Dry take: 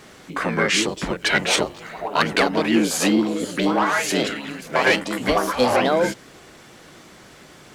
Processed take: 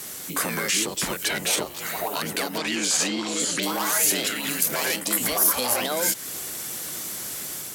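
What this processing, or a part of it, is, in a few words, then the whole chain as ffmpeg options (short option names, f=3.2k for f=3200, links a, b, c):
FM broadcast chain: -filter_complex "[0:a]asettb=1/sr,asplit=3[a][b][c];[a]atrim=end=2.584[d];[b]atrim=start=2.58:end=3.63,asetpts=PTS-STARTPTS,afade=t=in:d=0.004:c=qsin,afade=t=out:st=1.046:d=0.004:c=qsin,lowpass=f=7.4k:w=0.5412,lowpass=f=7.4k:w=1.3066[e];[c]atrim=start=3.626[f];[d][e]acrossfade=d=0.004:c1=hsin:c2=qsin[g];[g][f]acrossfade=d=0.004:c1=qsin:c2=hsin,highpass=53,dynaudnorm=f=270:g=3:m=3.5dB,acrossover=split=800|3500[h][i][j];[h]acompressor=threshold=-29dB:ratio=4[k];[i]acompressor=threshold=-30dB:ratio=4[l];[j]acompressor=threshold=-39dB:ratio=4[m];[k][l][m]amix=inputs=3:normalize=0,aemphasis=mode=production:type=50fm,alimiter=limit=-17.5dB:level=0:latency=1:release=28,asoftclip=type=hard:threshold=-19.5dB,lowpass=f=15k:w=0.5412,lowpass=f=15k:w=1.3066,aemphasis=mode=production:type=50fm"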